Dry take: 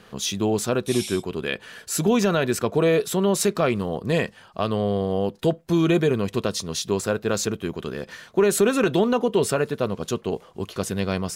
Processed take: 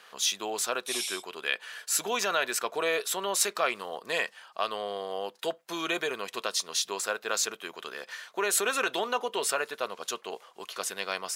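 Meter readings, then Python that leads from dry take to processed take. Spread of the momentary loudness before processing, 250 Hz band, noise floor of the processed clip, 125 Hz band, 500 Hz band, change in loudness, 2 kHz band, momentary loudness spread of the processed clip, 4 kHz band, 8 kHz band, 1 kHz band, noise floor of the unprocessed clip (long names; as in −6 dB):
10 LU, −19.5 dB, −59 dBFS, −29.5 dB, −11.0 dB, −6.5 dB, −0.5 dB, 9 LU, 0.0 dB, 0.0 dB, −2.5 dB, −51 dBFS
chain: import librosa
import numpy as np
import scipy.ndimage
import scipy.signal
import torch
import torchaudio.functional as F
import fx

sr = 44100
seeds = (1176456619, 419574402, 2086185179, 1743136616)

y = scipy.signal.sosfilt(scipy.signal.butter(2, 870.0, 'highpass', fs=sr, output='sos'), x)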